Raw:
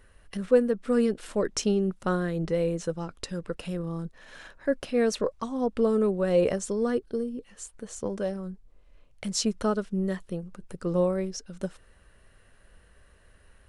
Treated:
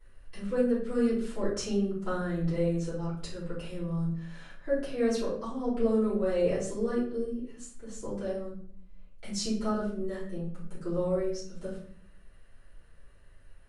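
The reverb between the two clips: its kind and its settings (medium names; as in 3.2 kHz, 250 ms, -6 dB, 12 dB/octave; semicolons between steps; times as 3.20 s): simulated room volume 77 m³, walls mixed, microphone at 3 m; trim -16.5 dB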